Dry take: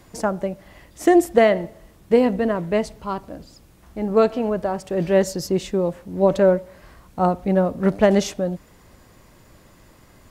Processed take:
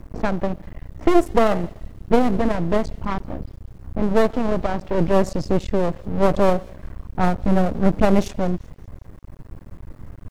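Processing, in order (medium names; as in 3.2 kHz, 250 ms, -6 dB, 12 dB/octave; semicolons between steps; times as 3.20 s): RIAA curve playback; half-wave rectifier; treble shelf 5.1 kHz +9.5 dB; in parallel at -1 dB: compression, threshold -21 dBFS, peak gain reduction 14 dB; on the sum: level-controlled noise filter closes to 1.6 kHz, open at -9.5 dBFS; bit crusher 10-bit; on a send: feedback echo behind a high-pass 193 ms, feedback 43%, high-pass 3.2 kHz, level -19 dB; on the sum: trim -2.5 dB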